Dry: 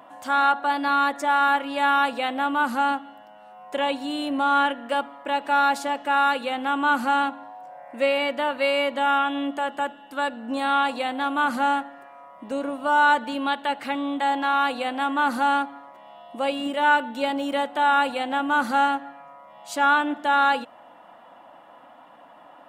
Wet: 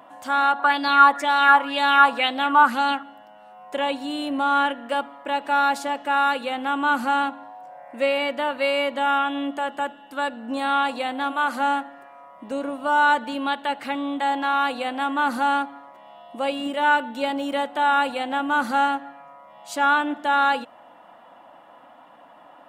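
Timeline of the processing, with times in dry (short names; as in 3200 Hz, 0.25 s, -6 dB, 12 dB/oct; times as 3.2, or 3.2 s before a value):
0.59–3.03 LFO bell 2 Hz 990–4600 Hz +13 dB
11.31–11.86 HPF 400 Hz -> 160 Hz 24 dB/oct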